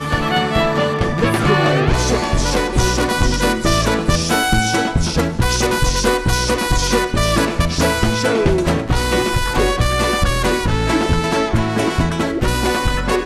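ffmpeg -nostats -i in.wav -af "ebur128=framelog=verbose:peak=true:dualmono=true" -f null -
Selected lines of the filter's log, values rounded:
Integrated loudness:
  I:         -13.8 LUFS
  Threshold: -23.8 LUFS
Loudness range:
  LRA:         1.0 LU
  Threshold: -33.7 LUFS
  LRA low:   -14.2 LUFS
  LRA high:  -13.2 LUFS
True peak:
  Peak:       -4.2 dBFS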